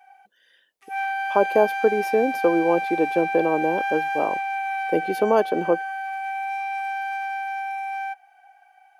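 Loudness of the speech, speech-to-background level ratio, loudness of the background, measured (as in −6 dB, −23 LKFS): −23.0 LKFS, 4.5 dB, −27.5 LKFS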